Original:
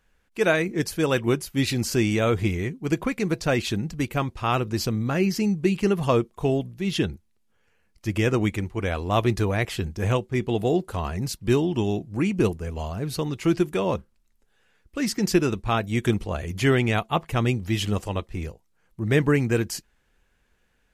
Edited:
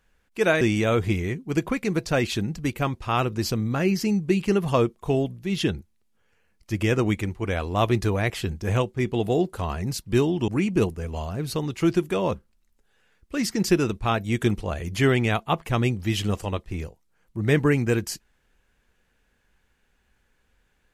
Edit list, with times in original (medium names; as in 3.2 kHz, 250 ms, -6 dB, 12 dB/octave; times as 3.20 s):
0.61–1.96 s: delete
11.83–12.11 s: delete